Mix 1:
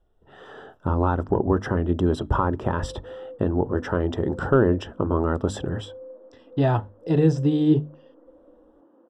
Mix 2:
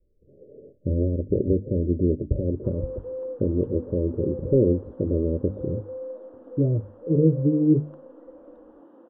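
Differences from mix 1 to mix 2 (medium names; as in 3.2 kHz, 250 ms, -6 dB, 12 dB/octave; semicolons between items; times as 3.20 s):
speech: add Chebyshev low-pass 590 Hz, order 8; background +6.0 dB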